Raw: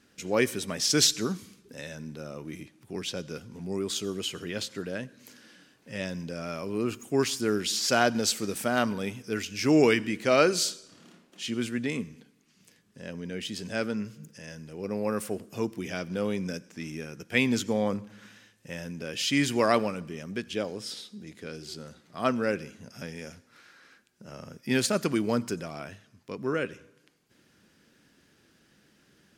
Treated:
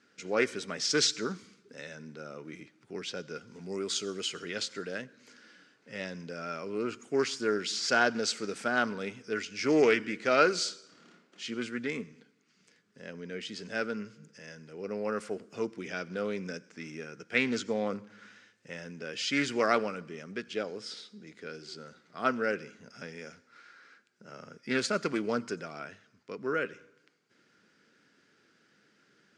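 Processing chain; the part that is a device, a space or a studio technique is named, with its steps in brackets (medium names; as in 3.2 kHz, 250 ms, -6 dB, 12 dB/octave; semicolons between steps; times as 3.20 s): full-range speaker at full volume (loudspeaker Doppler distortion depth 0.16 ms; cabinet simulation 150–7800 Hz, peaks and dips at 440 Hz +5 dB, 1.4 kHz +9 dB, 2.1 kHz +5 dB, 4.7 kHz +3 dB); 3.47–5.02 s: treble shelf 3.8 kHz +8 dB; trim -5.5 dB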